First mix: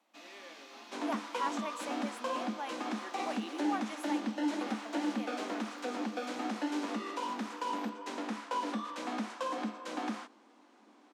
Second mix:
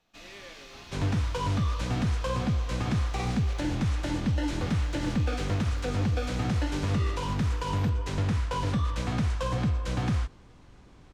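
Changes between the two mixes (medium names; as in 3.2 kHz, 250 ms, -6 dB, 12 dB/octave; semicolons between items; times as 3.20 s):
speech: muted; master: remove rippled Chebyshev high-pass 210 Hz, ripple 6 dB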